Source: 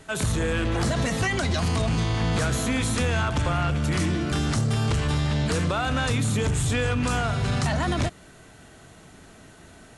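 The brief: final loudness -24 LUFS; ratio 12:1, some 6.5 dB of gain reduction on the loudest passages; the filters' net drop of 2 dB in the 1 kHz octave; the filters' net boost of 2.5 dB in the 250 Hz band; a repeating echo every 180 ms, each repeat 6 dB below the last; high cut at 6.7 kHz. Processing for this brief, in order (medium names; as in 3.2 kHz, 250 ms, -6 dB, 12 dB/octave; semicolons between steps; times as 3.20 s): low-pass 6.7 kHz; peaking EQ 250 Hz +3.5 dB; peaking EQ 1 kHz -3 dB; compression 12:1, threshold -26 dBFS; feedback delay 180 ms, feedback 50%, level -6 dB; trim +5 dB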